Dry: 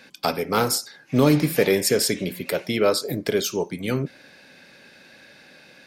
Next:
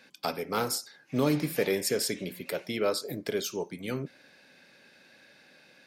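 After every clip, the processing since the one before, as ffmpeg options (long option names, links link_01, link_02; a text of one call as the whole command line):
ffmpeg -i in.wav -af "lowshelf=frequency=97:gain=-7,volume=-8dB" out.wav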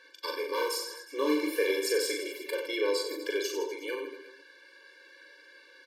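ffmpeg -i in.wav -filter_complex "[0:a]aecho=1:1:40|92|159.6|247.5|361.7:0.631|0.398|0.251|0.158|0.1,asplit=2[link_01][link_02];[link_02]highpass=frequency=720:poles=1,volume=11dB,asoftclip=type=tanh:threshold=-12.5dB[link_03];[link_01][link_03]amix=inputs=2:normalize=0,lowpass=frequency=4400:poles=1,volume=-6dB,afftfilt=real='re*eq(mod(floor(b*sr/1024/300),2),1)':imag='im*eq(mod(floor(b*sr/1024/300),2),1)':win_size=1024:overlap=0.75,volume=-1.5dB" out.wav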